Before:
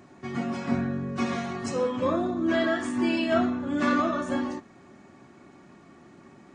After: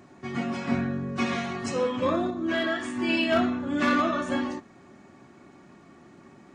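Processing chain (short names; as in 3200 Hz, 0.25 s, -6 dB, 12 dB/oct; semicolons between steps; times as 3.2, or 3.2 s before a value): dynamic EQ 2700 Hz, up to +6 dB, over -45 dBFS, Q 1; hard clip -15.5 dBFS, distortion -27 dB; 2.3–3.09 resonator 53 Hz, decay 0.25 s, harmonics all, mix 50%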